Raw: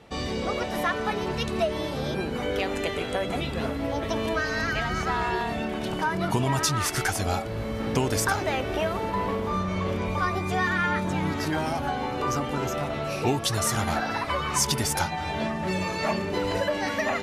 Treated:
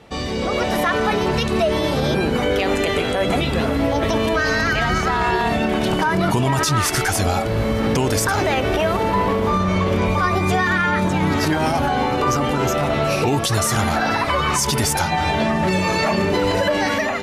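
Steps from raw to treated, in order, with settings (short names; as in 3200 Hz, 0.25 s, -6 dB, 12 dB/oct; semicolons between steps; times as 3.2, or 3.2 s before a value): limiter -21 dBFS, peak gain reduction 10.5 dB; AGC gain up to 6 dB; gain +5 dB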